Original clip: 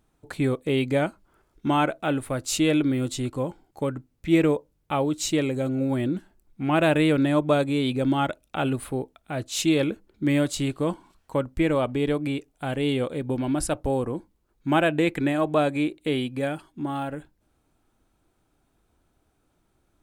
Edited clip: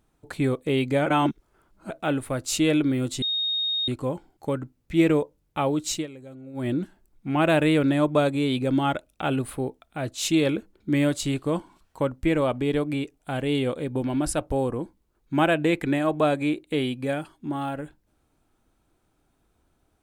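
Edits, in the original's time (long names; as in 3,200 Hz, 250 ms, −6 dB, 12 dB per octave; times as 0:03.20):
0:01.06–0:01.90: reverse
0:03.22: insert tone 3,720 Hz −23 dBFS 0.66 s
0:05.26–0:06.02: duck −16.5 dB, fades 0.15 s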